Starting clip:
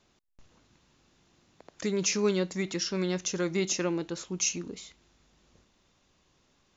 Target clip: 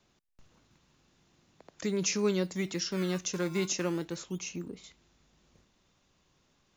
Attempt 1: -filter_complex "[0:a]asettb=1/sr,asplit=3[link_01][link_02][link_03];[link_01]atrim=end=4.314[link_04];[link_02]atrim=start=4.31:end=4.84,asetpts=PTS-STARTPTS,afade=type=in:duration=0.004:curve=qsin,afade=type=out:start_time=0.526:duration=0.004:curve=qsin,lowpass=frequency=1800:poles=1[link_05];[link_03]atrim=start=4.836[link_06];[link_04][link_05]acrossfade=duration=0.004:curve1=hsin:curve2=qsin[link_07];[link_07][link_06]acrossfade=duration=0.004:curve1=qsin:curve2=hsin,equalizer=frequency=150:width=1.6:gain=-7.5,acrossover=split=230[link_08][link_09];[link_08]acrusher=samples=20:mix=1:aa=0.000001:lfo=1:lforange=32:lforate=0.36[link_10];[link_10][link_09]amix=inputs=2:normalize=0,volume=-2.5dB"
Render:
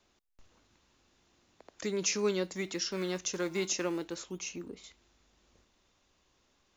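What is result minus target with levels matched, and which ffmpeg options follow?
125 Hz band −6.0 dB
-filter_complex "[0:a]asettb=1/sr,asplit=3[link_01][link_02][link_03];[link_01]atrim=end=4.314[link_04];[link_02]atrim=start=4.31:end=4.84,asetpts=PTS-STARTPTS,afade=type=in:duration=0.004:curve=qsin,afade=type=out:start_time=0.526:duration=0.004:curve=qsin,lowpass=frequency=1800:poles=1[link_05];[link_03]atrim=start=4.836[link_06];[link_04][link_05]acrossfade=duration=0.004:curve1=hsin:curve2=qsin[link_07];[link_07][link_06]acrossfade=duration=0.004:curve1=qsin:curve2=hsin,equalizer=frequency=150:width=1.6:gain=3,acrossover=split=230[link_08][link_09];[link_08]acrusher=samples=20:mix=1:aa=0.000001:lfo=1:lforange=32:lforate=0.36[link_10];[link_10][link_09]amix=inputs=2:normalize=0,volume=-2.5dB"

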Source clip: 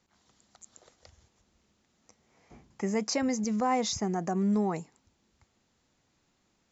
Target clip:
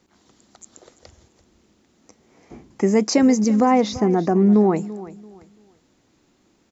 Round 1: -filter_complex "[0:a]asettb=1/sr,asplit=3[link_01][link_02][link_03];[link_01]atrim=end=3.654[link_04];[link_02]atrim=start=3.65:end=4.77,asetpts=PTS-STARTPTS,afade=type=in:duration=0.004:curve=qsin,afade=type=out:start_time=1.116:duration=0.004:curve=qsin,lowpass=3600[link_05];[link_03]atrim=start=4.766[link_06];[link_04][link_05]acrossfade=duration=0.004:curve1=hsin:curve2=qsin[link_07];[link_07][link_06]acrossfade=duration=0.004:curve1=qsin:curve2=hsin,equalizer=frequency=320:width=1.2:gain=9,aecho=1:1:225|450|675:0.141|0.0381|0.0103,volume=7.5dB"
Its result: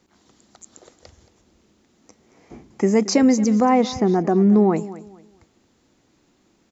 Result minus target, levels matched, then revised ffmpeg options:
echo 113 ms early
-filter_complex "[0:a]asettb=1/sr,asplit=3[link_01][link_02][link_03];[link_01]atrim=end=3.654[link_04];[link_02]atrim=start=3.65:end=4.77,asetpts=PTS-STARTPTS,afade=type=in:duration=0.004:curve=qsin,afade=type=out:start_time=1.116:duration=0.004:curve=qsin,lowpass=3600[link_05];[link_03]atrim=start=4.766[link_06];[link_04][link_05]acrossfade=duration=0.004:curve1=hsin:curve2=qsin[link_07];[link_07][link_06]acrossfade=duration=0.004:curve1=qsin:curve2=hsin,equalizer=frequency=320:width=1.2:gain=9,aecho=1:1:338|676|1014:0.141|0.0381|0.0103,volume=7.5dB"

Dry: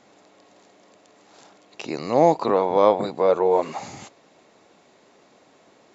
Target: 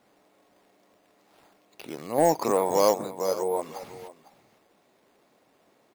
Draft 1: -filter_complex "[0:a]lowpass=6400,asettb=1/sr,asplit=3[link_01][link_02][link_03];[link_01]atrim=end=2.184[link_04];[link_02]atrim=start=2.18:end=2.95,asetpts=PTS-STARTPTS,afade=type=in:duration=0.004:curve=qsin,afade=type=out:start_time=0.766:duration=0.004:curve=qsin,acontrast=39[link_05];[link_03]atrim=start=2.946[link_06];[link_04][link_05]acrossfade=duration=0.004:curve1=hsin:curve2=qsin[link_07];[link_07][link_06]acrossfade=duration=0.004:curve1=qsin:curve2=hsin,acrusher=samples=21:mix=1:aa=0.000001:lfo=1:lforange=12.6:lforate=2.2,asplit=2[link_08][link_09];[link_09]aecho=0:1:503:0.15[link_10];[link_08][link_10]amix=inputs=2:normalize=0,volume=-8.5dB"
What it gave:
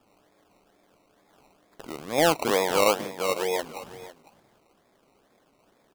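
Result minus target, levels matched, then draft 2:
sample-and-hold swept by an LFO: distortion +13 dB
-filter_complex "[0:a]lowpass=6400,asettb=1/sr,asplit=3[link_01][link_02][link_03];[link_01]atrim=end=2.184[link_04];[link_02]atrim=start=2.18:end=2.95,asetpts=PTS-STARTPTS,afade=type=in:duration=0.004:curve=qsin,afade=type=out:start_time=0.766:duration=0.004:curve=qsin,acontrast=39[link_05];[link_03]atrim=start=2.946[link_06];[link_04][link_05]acrossfade=duration=0.004:curve1=hsin:curve2=qsin[link_07];[link_07][link_06]acrossfade=duration=0.004:curve1=qsin:curve2=hsin,acrusher=samples=6:mix=1:aa=0.000001:lfo=1:lforange=3.6:lforate=2.2,asplit=2[link_08][link_09];[link_09]aecho=0:1:503:0.15[link_10];[link_08][link_10]amix=inputs=2:normalize=0,volume=-8.5dB"

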